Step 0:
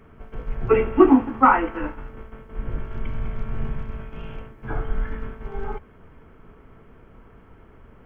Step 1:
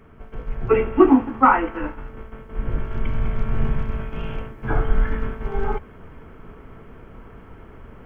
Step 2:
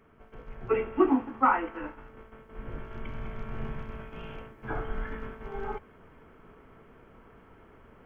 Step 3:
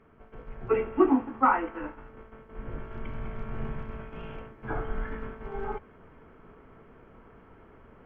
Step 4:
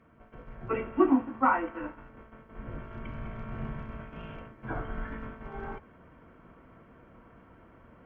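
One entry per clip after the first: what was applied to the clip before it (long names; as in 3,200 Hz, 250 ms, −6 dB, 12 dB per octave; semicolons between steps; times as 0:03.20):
speech leveller within 4 dB 2 s; level +2.5 dB
low-shelf EQ 160 Hz −9 dB; level −8 dB
low-pass filter 2,400 Hz 6 dB per octave; level +1.5 dB
notch comb filter 420 Hz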